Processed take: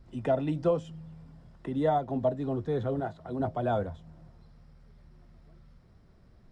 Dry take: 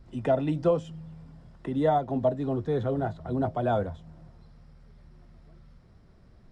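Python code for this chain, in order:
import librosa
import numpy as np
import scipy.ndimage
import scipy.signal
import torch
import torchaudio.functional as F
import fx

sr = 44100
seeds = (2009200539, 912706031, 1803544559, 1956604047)

y = fx.low_shelf(x, sr, hz=150.0, db=-11.0, at=(3.0, 3.4))
y = y * librosa.db_to_amplitude(-2.5)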